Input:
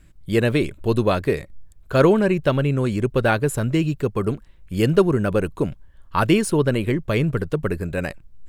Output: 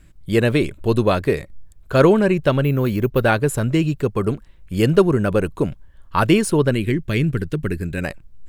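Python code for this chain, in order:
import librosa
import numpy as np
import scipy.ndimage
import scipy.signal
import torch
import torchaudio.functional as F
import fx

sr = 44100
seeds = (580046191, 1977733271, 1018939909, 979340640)

y = fx.resample_bad(x, sr, factor=3, down='filtered', up='hold', at=(2.64, 3.24))
y = fx.band_shelf(y, sr, hz=770.0, db=-9.5, octaves=1.7, at=(6.72, 8.02))
y = y * librosa.db_to_amplitude(2.0)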